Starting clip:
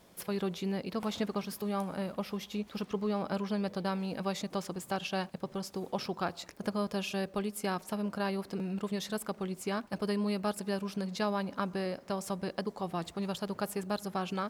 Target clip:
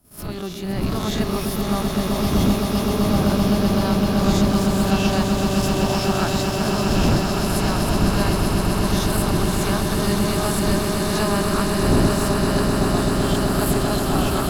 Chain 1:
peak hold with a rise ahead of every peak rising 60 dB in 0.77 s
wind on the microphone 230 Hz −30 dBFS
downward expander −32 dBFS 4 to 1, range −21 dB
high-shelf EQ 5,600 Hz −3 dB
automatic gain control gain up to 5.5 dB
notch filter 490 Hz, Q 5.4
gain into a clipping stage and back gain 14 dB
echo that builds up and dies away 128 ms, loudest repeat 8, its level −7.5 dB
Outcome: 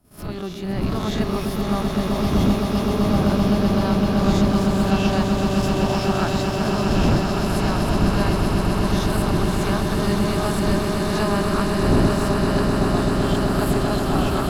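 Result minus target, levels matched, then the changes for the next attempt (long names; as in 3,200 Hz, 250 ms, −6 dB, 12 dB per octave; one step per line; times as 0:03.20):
8,000 Hz band −6.0 dB
change: high-shelf EQ 5,600 Hz +6.5 dB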